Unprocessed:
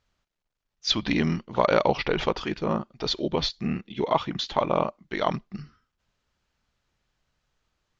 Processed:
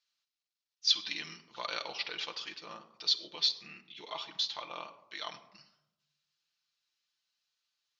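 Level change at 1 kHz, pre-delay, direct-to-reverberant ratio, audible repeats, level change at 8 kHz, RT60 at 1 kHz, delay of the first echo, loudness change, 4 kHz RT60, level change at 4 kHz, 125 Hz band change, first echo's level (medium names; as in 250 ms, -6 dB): -16.5 dB, 6 ms, 3.5 dB, no echo, no reading, 0.90 s, no echo, -7.5 dB, 0.40 s, -1.0 dB, under -30 dB, no echo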